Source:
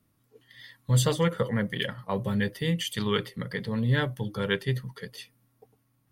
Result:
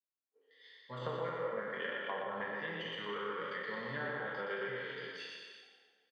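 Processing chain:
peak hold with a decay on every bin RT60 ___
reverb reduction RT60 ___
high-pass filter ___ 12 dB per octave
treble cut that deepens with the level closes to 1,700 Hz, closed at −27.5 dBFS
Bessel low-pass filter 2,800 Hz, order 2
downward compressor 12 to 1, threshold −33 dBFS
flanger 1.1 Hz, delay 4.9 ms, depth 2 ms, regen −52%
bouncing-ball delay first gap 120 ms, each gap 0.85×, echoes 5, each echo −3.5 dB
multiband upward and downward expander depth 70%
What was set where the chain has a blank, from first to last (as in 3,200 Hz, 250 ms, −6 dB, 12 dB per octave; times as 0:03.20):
2.77 s, 1.1 s, 490 Hz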